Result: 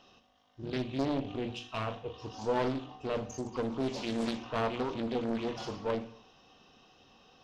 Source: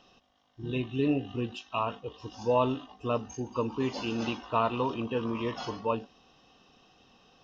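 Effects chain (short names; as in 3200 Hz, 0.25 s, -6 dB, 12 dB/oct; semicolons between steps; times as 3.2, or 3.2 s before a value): one diode to ground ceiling -30 dBFS; 0.93–3.5 doubler 37 ms -10 dB; reverb RT60 0.60 s, pre-delay 5 ms, DRR 8 dB; dynamic EQ 1300 Hz, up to -7 dB, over -45 dBFS, Q 0.8; notches 60/120/180/240/300 Hz; Doppler distortion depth 0.65 ms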